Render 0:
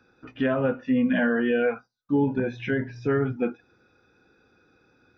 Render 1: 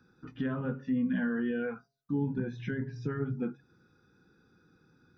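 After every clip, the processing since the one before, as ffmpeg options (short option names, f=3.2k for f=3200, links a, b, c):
-af "equalizer=f=160:t=o:w=0.67:g=10,equalizer=f=630:t=o:w=0.67:g=-12,equalizer=f=2.5k:t=o:w=0.67:g=-10,acompressor=threshold=-35dB:ratio=1.5,bandreject=f=137.1:t=h:w=4,bandreject=f=274.2:t=h:w=4,bandreject=f=411.3:t=h:w=4,bandreject=f=548.4:t=h:w=4,bandreject=f=685.5:t=h:w=4,volume=-2.5dB"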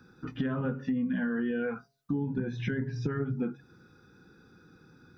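-af "acompressor=threshold=-35dB:ratio=6,volume=7.5dB"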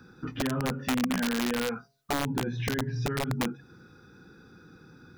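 -filter_complex "[0:a]asplit=2[a][b];[b]alimiter=level_in=5.5dB:limit=-24dB:level=0:latency=1:release=163,volume=-5.5dB,volume=2dB[c];[a][c]amix=inputs=2:normalize=0,aeval=exprs='(mod(9.44*val(0)+1,2)-1)/9.44':c=same,volume=-2.5dB"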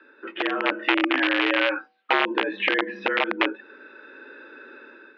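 -af "crystalizer=i=9.5:c=0,highpass=f=220:t=q:w=0.5412,highpass=f=220:t=q:w=1.307,lowpass=f=2.8k:t=q:w=0.5176,lowpass=f=2.8k:t=q:w=0.7071,lowpass=f=2.8k:t=q:w=1.932,afreqshift=78,dynaudnorm=f=170:g=5:m=9dB,volume=-2.5dB"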